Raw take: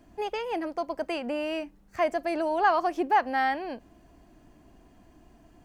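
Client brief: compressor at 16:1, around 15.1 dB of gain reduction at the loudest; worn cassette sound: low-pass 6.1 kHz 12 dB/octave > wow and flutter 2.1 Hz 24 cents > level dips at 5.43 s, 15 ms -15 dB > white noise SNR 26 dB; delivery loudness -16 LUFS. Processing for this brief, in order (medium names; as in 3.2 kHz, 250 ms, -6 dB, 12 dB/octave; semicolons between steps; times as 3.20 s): compression 16:1, threshold -32 dBFS; low-pass 6.1 kHz 12 dB/octave; wow and flutter 2.1 Hz 24 cents; level dips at 5.43 s, 15 ms -15 dB; white noise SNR 26 dB; trim +21.5 dB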